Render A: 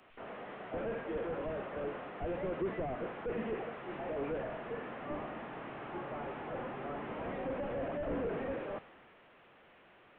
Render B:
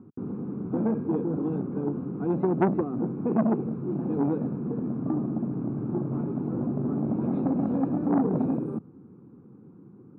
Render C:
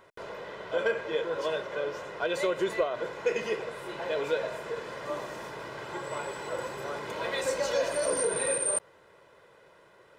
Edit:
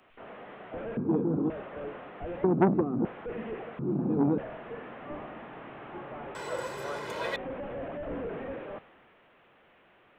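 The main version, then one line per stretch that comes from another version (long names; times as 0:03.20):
A
0:00.97–0:01.50: punch in from B
0:02.44–0:03.05: punch in from B
0:03.79–0:04.38: punch in from B
0:06.35–0:07.36: punch in from C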